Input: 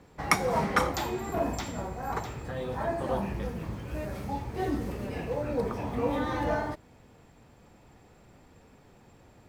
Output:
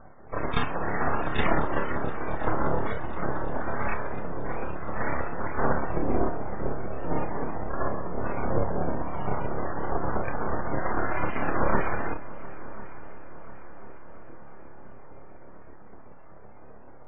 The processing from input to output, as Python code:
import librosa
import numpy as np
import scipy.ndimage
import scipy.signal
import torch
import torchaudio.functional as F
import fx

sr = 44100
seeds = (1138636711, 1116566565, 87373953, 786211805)

y = fx.riaa(x, sr, side='playback')
y = fx.spec_gate(y, sr, threshold_db=-10, keep='weak')
y = np.abs(y)
y = fx.spec_topn(y, sr, count=64)
y = fx.stretch_grains(y, sr, factor=1.8, grain_ms=127.0)
y = fx.echo_heads(y, sr, ms=349, heads='second and third', feedback_pct=58, wet_db=-19.5)
y = F.gain(torch.from_numpy(y), 9.0).numpy()